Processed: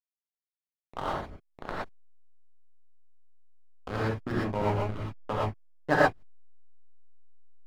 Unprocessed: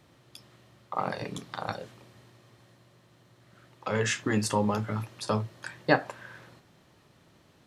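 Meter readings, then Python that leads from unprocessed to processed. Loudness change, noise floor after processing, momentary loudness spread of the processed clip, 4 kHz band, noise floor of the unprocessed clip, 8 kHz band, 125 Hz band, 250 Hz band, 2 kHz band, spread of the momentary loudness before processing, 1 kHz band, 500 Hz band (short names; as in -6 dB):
0.0 dB, under -85 dBFS, 20 LU, -6.5 dB, -62 dBFS, under -15 dB, -0.5 dB, -3.0 dB, 0.0 dB, 15 LU, +1.0 dB, +0.5 dB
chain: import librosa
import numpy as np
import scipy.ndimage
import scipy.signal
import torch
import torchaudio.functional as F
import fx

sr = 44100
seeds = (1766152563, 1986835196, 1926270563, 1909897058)

y = fx.filter_lfo_lowpass(x, sr, shape='saw_down', hz=3.1, low_hz=480.0, high_hz=2800.0, q=1.6)
y = fx.backlash(y, sr, play_db=-20.0)
y = fx.rev_gated(y, sr, seeds[0], gate_ms=140, shape='rising', drr_db=-6.5)
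y = F.gain(torch.from_numpy(y), -5.0).numpy()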